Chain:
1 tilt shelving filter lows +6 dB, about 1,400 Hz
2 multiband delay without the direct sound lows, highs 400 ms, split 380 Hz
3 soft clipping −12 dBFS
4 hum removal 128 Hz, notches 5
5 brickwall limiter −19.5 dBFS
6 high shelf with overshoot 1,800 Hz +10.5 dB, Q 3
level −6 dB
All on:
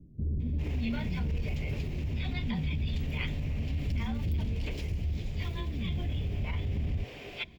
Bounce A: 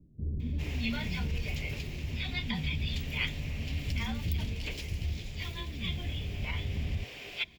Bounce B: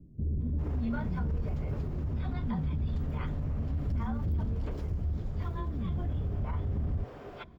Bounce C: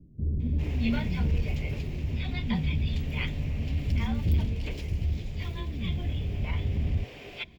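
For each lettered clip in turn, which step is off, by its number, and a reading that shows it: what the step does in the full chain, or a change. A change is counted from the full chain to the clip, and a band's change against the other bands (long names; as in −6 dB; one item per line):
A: 1, 4 kHz band +9.0 dB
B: 6, 4 kHz band −14.5 dB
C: 5, average gain reduction 2.0 dB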